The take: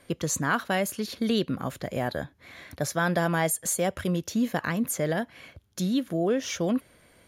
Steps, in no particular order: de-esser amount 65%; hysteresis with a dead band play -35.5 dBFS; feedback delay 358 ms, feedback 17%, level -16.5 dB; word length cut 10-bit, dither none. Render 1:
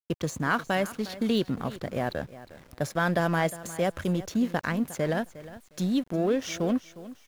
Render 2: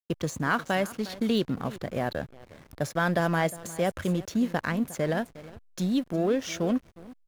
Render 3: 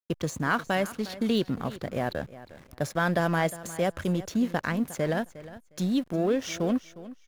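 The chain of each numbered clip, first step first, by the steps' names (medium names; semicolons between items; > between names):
hysteresis with a dead band > de-esser > feedback delay > word length cut; word length cut > feedback delay > hysteresis with a dead band > de-esser; word length cut > hysteresis with a dead band > de-esser > feedback delay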